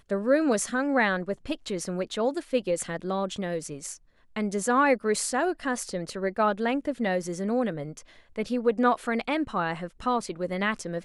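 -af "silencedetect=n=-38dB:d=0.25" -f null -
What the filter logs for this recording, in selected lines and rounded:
silence_start: 3.95
silence_end: 4.36 | silence_duration: 0.42
silence_start: 7.99
silence_end: 8.36 | silence_duration: 0.37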